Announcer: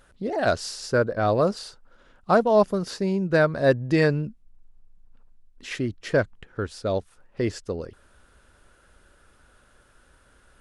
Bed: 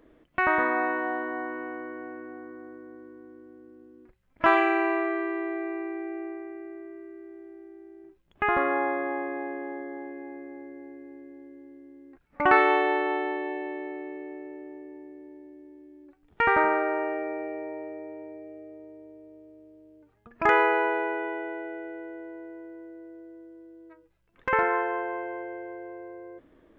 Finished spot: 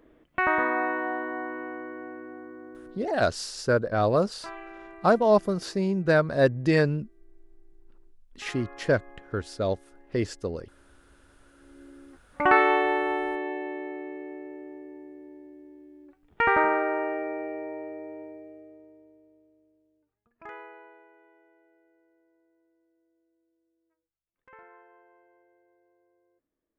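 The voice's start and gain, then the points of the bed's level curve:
2.75 s, -1.5 dB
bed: 2.90 s -0.5 dB
3.44 s -20.5 dB
11.38 s -20.5 dB
11.83 s 0 dB
18.21 s 0 dB
21.09 s -28 dB

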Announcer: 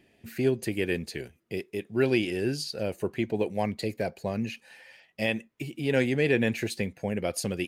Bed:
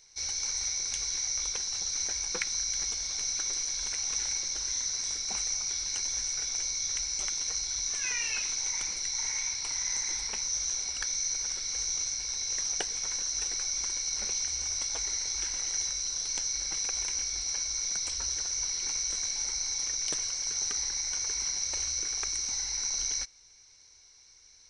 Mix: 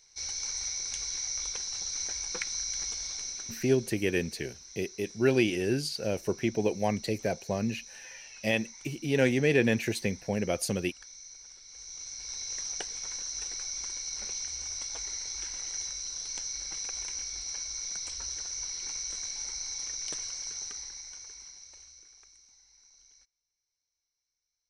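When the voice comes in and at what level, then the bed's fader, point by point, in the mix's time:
3.25 s, 0.0 dB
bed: 3.08 s -2.5 dB
3.99 s -17 dB
11.66 s -17 dB
12.33 s -4.5 dB
20.39 s -4.5 dB
22.59 s -28.5 dB

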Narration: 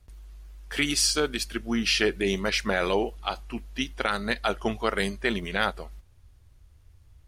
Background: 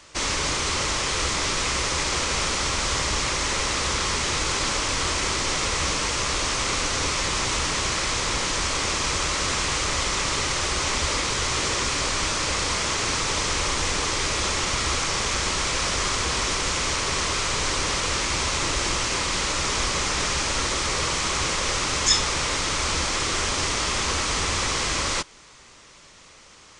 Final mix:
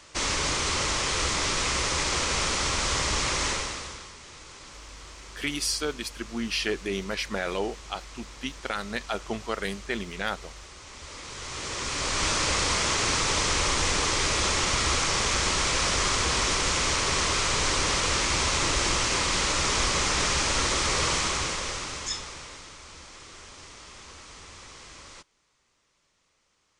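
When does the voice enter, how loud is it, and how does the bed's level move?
4.65 s, -4.5 dB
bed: 3.48 s -2 dB
4.14 s -21.5 dB
10.85 s -21.5 dB
12.28 s -0.5 dB
21.15 s -0.5 dB
22.80 s -21.5 dB

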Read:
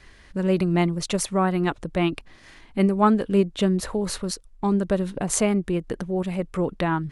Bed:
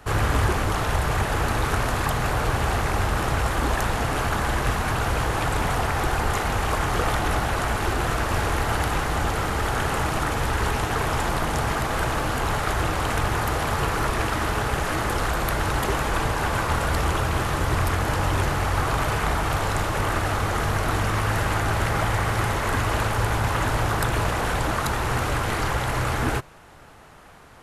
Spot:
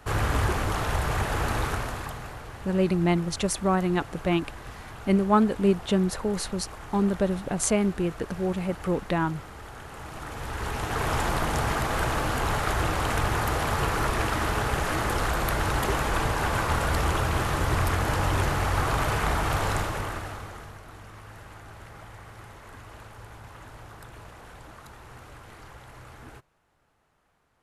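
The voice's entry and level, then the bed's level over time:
2.30 s, -2.0 dB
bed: 1.61 s -3.5 dB
2.45 s -18 dB
9.88 s -18 dB
11.11 s -2 dB
19.73 s -2 dB
20.83 s -22 dB

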